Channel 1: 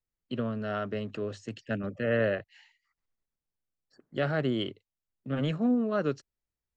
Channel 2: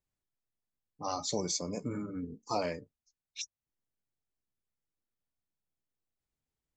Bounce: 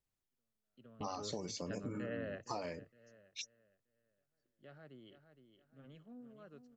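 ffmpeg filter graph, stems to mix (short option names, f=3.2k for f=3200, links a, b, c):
-filter_complex "[0:a]volume=-9.5dB,asplit=2[a][b];[b]volume=-18.5dB[c];[1:a]acrossover=split=4500[d][e];[e]acompressor=threshold=-46dB:ratio=4:attack=1:release=60[f];[d][f]amix=inputs=2:normalize=0,volume=-1dB,asplit=2[g][h];[h]apad=whole_len=298501[i];[a][i]sidechaingate=range=-54dB:threshold=-57dB:ratio=16:detection=peak[j];[c]aecho=0:1:464|928|1392|1856|2320:1|0.33|0.109|0.0359|0.0119[k];[j][g][k]amix=inputs=3:normalize=0,acompressor=threshold=-38dB:ratio=6"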